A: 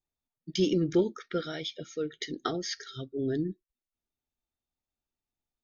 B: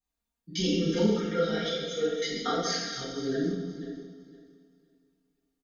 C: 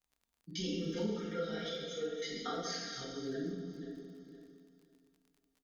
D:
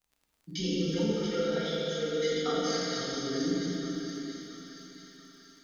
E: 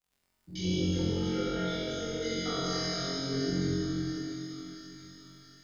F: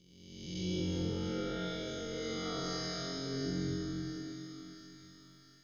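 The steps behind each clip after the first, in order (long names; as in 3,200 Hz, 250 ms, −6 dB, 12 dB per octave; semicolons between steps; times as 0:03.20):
feedback delay that plays each chunk backwards 256 ms, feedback 43%, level −9.5 dB; comb filter 4.3 ms, depth 84%; coupled-rooms reverb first 0.95 s, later 2.7 s, from −18 dB, DRR −10 dB; level −8 dB
downward compressor 1.5 to 1, threshold −49 dBFS, peak gain reduction 10.5 dB; surface crackle 44 per second −54 dBFS; level −1.5 dB
echo with a time of its own for lows and highs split 1,300 Hz, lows 101 ms, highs 682 ms, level −7.5 dB; four-comb reverb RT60 3.7 s, DRR 0 dB; level +4 dB
sub-octave generator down 1 octave, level −4 dB; on a send: flutter between parallel walls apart 3.8 metres, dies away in 0.92 s; on the sum: level −6.5 dB
peak hold with a rise ahead of every peak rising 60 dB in 1.32 s; level −7.5 dB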